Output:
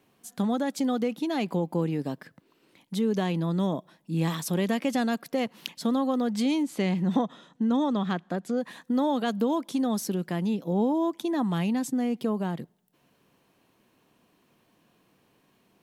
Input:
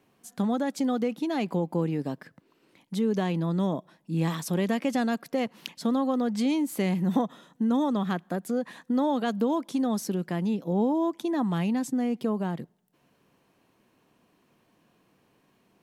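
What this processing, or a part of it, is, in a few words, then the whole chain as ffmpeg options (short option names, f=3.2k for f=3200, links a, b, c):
presence and air boost: -filter_complex "[0:a]asettb=1/sr,asplit=3[a][b][c];[a]atrim=end=6.634[d];[b]atrim=start=6.63:end=8.58,asetpts=PTS-STARTPTS,afade=t=in:d=0.004:c=qsin,afade=t=out:st=1.946:d=0.004:c=qsin,lowpass=6.4k[e];[c]atrim=start=8.576[f];[d][e]acrossfade=d=0.004:c1=hsin:c2=qsin[g];[g][f]acrossfade=d=0.004:c1=qsin:c2=hsin,equalizer=f=3.5k:t=o:w=0.77:g=2.5,highshelf=f=9.4k:g=5"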